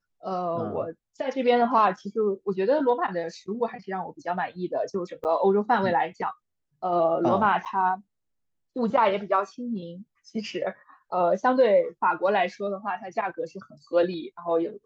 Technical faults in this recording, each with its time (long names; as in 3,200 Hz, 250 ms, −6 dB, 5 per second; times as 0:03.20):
0:05.24–0:05.25: drop-out 9.3 ms
0:07.65–0:07.66: drop-out 8.3 ms